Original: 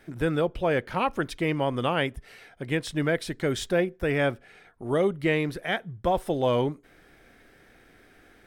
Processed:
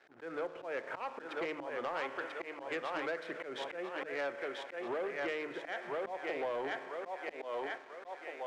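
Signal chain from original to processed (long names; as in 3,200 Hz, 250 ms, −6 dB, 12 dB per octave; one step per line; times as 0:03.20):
adaptive Wiener filter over 9 samples
high-pass filter 150 Hz 12 dB per octave
three-way crossover with the lows and the highs turned down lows −16 dB, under 290 Hz, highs −21 dB, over 2,800 Hz
on a send: feedback echo with a high-pass in the loop 990 ms, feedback 46%, high-pass 400 Hz, level −5.5 dB
on the sum: spring reverb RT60 1.3 s, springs 30 ms, chirp 65 ms, DRR 14.5 dB
downward compressor 8 to 1, threshold −31 dBFS, peak gain reduction 11.5 dB
volume swells 131 ms
leveller curve on the samples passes 2
low-pass filter 9,100 Hz 12 dB per octave
low-shelf EQ 340 Hz −9.5 dB
mains-hum notches 50/100/150/200/250/300 Hz
level −5 dB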